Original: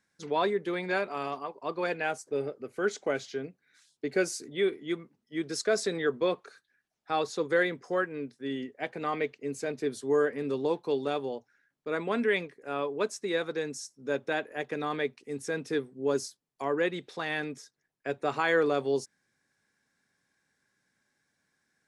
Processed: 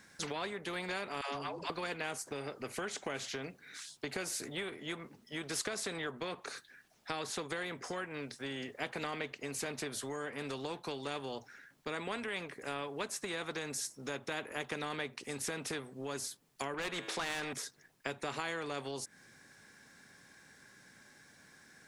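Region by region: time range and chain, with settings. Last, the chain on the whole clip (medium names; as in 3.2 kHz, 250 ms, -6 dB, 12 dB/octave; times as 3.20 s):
1.21–1.70 s: low-pass 9.8 kHz + phase dispersion lows, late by 147 ms, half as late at 400 Hz
16.74–17.53 s: tone controls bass 0 dB, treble +4 dB + feedback comb 110 Hz, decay 1.8 s, mix 40% + overdrive pedal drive 17 dB, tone 2.7 kHz, clips at -21 dBFS
whole clip: dynamic bell 5 kHz, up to -6 dB, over -52 dBFS, Q 1.2; compression 4:1, threshold -36 dBFS; spectrum-flattening compressor 2:1; trim +3 dB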